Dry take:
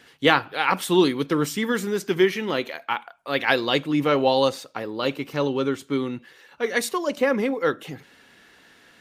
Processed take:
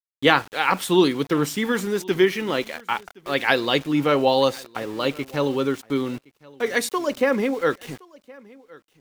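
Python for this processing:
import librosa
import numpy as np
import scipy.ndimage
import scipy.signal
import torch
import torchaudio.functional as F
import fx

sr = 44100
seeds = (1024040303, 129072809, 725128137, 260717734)

p1 = np.where(np.abs(x) >= 10.0 ** (-38.0 / 20.0), x, 0.0)
p2 = p1 + fx.echo_single(p1, sr, ms=1068, db=-24.0, dry=0)
y = F.gain(torch.from_numpy(p2), 1.0).numpy()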